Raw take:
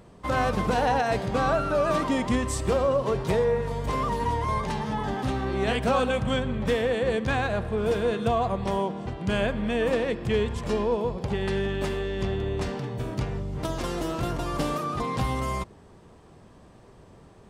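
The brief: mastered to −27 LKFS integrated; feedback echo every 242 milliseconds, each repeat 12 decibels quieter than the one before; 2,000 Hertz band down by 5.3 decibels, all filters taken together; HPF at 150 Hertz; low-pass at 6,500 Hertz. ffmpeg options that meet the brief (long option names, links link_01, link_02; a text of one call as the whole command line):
ffmpeg -i in.wav -af "highpass=150,lowpass=6500,equalizer=frequency=2000:width_type=o:gain=-7,aecho=1:1:242|484|726:0.251|0.0628|0.0157,volume=1dB" out.wav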